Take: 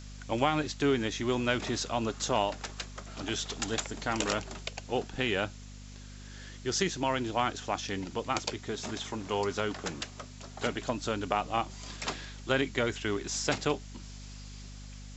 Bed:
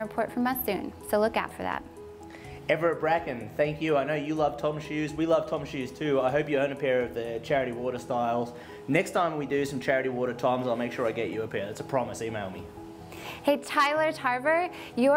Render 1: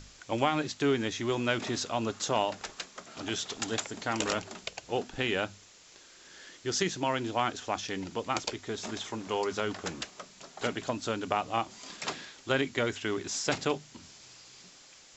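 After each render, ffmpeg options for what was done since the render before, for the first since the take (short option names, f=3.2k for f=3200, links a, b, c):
-af "bandreject=f=50:t=h:w=6,bandreject=f=100:t=h:w=6,bandreject=f=150:t=h:w=6,bandreject=f=200:t=h:w=6,bandreject=f=250:t=h:w=6"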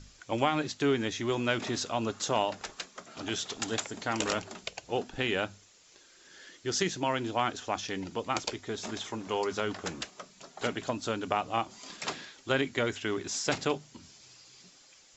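-af "afftdn=nr=6:nf=-55"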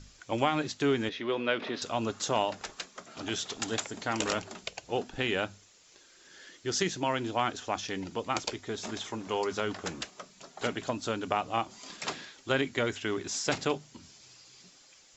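-filter_complex "[0:a]asettb=1/sr,asplit=3[a][b][c];[a]atrim=end=1.094[d];[b]atrim=start=1.09:end=1.82,asetpts=PTS-STARTPTS,afade=t=in:d=0.004:c=qsin,afade=t=out:st=0.726:d=0.004:c=qsin,highpass=240,equalizer=f=330:t=q:w=4:g=-3,equalizer=f=490:t=q:w=4:g=5,equalizer=f=790:t=q:w=4:g=-4,lowpass=f=4k:w=0.5412,lowpass=f=4k:w=1.3066[e];[c]atrim=start=1.816[f];[d][e]acrossfade=d=0.004:c1=hsin:c2=qsin[g];[g][f]acrossfade=d=0.004:c1=qsin:c2=hsin"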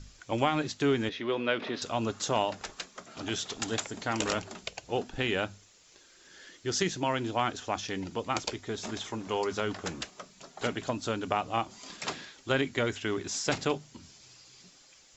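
-af "lowshelf=f=120:g=5"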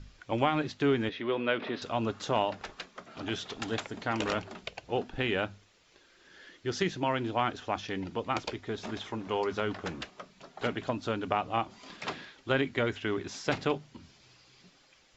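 -af "lowpass=3.6k"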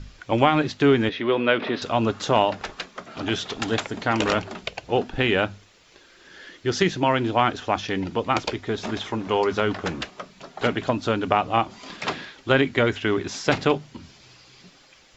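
-af "volume=9dB"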